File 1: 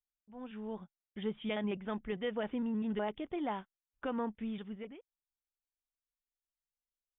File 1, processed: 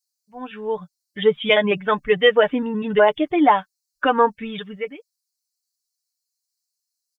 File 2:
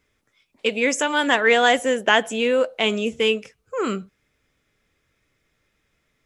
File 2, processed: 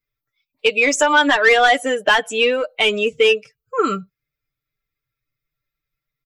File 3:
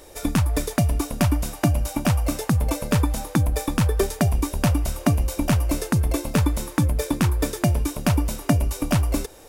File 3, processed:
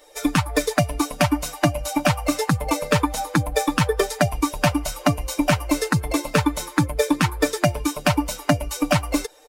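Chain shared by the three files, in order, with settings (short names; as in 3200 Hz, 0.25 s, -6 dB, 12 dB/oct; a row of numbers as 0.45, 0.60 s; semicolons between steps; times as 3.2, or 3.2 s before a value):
per-bin expansion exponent 1.5; high shelf 8500 Hz -2 dB; overdrive pedal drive 16 dB, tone 4000 Hz, clips at -3.5 dBFS; compressor 2:1, threshold -19 dBFS; comb 6.7 ms, depth 58%; normalise peaks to -3 dBFS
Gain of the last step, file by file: +15.0, +3.0, +2.0 dB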